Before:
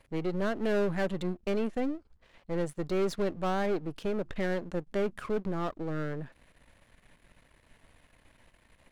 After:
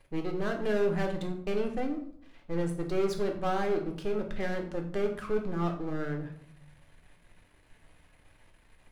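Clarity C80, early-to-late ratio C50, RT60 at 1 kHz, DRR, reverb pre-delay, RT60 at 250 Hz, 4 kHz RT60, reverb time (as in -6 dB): 12.0 dB, 8.5 dB, 0.60 s, 3.0 dB, 3 ms, 0.95 s, 0.40 s, 0.65 s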